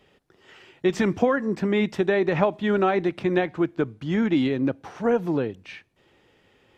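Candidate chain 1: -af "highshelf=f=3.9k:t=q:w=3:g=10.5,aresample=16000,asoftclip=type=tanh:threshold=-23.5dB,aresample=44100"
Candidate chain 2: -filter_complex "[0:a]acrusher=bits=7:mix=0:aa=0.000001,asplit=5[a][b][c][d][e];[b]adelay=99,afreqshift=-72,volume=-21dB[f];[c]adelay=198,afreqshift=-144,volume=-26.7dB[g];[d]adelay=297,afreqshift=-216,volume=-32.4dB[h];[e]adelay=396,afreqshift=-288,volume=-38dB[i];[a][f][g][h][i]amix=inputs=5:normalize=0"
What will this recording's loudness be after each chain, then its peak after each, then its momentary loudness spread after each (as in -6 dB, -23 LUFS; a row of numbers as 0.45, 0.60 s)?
-29.0, -24.0 LUFS; -19.5, -5.0 dBFS; 7, 6 LU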